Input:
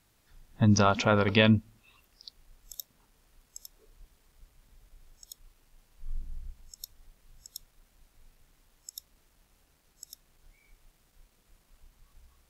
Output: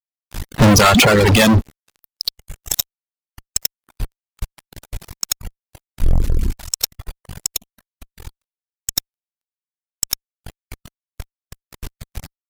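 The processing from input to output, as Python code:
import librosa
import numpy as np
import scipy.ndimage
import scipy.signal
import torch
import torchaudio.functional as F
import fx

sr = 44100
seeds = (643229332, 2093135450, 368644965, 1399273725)

y = fx.fuzz(x, sr, gain_db=43.0, gate_db=-52.0)
y = fx.dereverb_blind(y, sr, rt60_s=1.9)
y = fx.env_flanger(y, sr, rest_ms=9.1, full_db=-29.0, at=(7.53, 8.94), fade=0.02)
y = y * librosa.db_to_amplitude(5.5)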